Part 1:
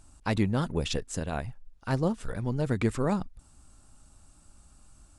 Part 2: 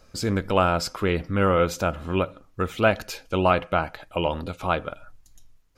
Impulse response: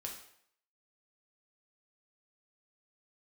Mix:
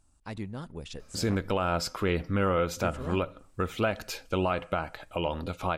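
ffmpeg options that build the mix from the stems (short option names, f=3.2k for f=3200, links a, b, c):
-filter_complex "[0:a]volume=-11.5dB,asplit=3[a][b][c];[a]atrim=end=1.35,asetpts=PTS-STARTPTS,afade=t=out:st=1.346:d=0.004:c=hsin[d];[b]atrim=start=1.35:end=2.77,asetpts=PTS-STARTPTS,volume=0[e];[c]atrim=start=2.77,asetpts=PTS-STARTPTS,afade=t=in:d=0.004:c=hsin[f];[d][e][f]concat=n=3:v=0:a=1,asplit=2[g][h];[h]volume=-23.5dB[i];[1:a]alimiter=limit=-15dB:level=0:latency=1:release=257,adelay=1000,volume=-2dB,asplit=2[j][k];[k]volume=-23dB[l];[2:a]atrim=start_sample=2205[m];[i][l]amix=inputs=2:normalize=0[n];[n][m]afir=irnorm=-1:irlink=0[o];[g][j][o]amix=inputs=3:normalize=0"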